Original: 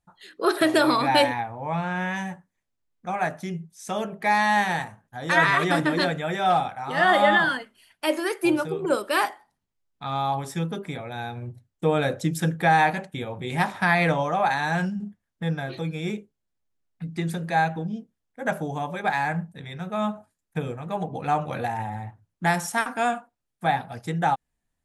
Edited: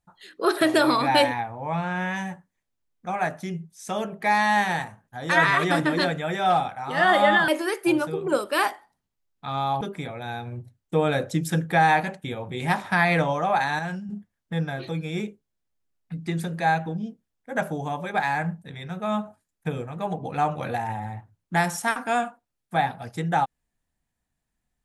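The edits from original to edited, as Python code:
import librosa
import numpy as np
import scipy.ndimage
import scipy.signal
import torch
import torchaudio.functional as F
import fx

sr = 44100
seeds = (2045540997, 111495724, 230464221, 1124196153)

y = fx.edit(x, sr, fx.cut(start_s=7.48, length_s=0.58),
    fx.cut(start_s=10.39, length_s=0.32),
    fx.clip_gain(start_s=14.69, length_s=0.3, db=-6.0), tone=tone)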